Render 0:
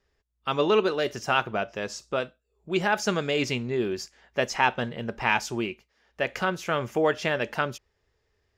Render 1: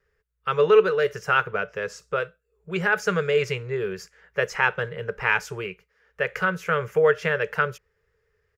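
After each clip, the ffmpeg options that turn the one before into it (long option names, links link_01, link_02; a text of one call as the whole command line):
ffmpeg -i in.wav -af "firequalizer=gain_entry='entry(110,0);entry(180,5);entry(250,-29);entry(440,9);entry(690,-8);entry(1400,7);entry(3600,-7);entry(12000,0)':delay=0.05:min_phase=1" out.wav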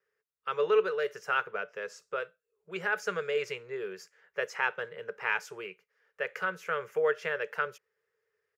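ffmpeg -i in.wav -af "highpass=300,volume=-8dB" out.wav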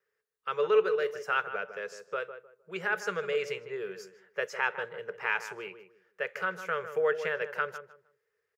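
ffmpeg -i in.wav -filter_complex "[0:a]asplit=2[link_01][link_02];[link_02]adelay=154,lowpass=frequency=1400:poles=1,volume=-9.5dB,asplit=2[link_03][link_04];[link_04]adelay=154,lowpass=frequency=1400:poles=1,volume=0.26,asplit=2[link_05][link_06];[link_06]adelay=154,lowpass=frequency=1400:poles=1,volume=0.26[link_07];[link_01][link_03][link_05][link_07]amix=inputs=4:normalize=0" out.wav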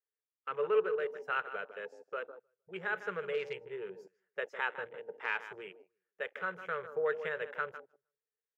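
ffmpeg -i in.wav -af "afwtdn=0.00794,volume=-5dB" out.wav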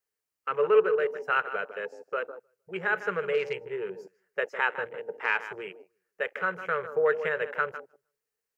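ffmpeg -i in.wav -af "equalizer=frequency=3500:width=6.7:gain=-9.5,volume=8dB" out.wav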